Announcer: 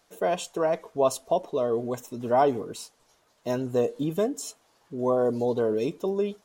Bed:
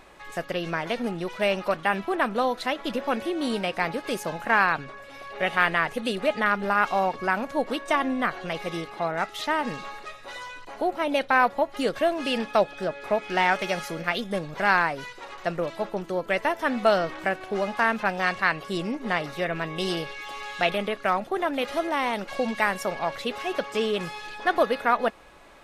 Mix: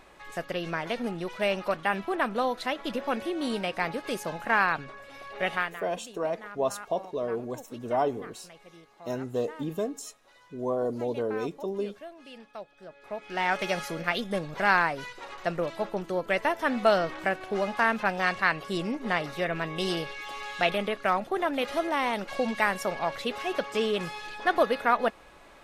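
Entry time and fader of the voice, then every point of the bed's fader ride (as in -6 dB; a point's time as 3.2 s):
5.60 s, -5.0 dB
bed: 5.54 s -3 dB
5.82 s -20.5 dB
12.74 s -20.5 dB
13.63 s -1.5 dB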